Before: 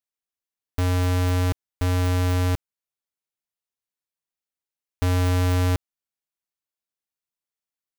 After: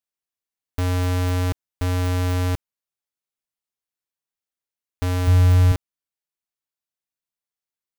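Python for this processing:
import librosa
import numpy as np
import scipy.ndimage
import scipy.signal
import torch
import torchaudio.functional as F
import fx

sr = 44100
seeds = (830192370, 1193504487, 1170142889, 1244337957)

y = fx.rider(x, sr, range_db=10, speed_s=2.0)
y = fx.low_shelf_res(y, sr, hz=110.0, db=8.5, q=1.5, at=(5.27, 5.72))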